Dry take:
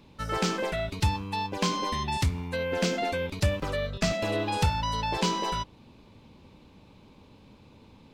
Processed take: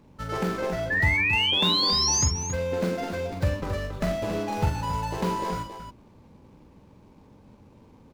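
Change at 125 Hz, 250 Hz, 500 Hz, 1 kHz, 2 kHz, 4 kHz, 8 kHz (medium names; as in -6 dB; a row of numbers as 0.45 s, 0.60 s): +1.5 dB, +1.0 dB, +1.0 dB, -0.5 dB, +7.0 dB, +8.5 dB, +10.0 dB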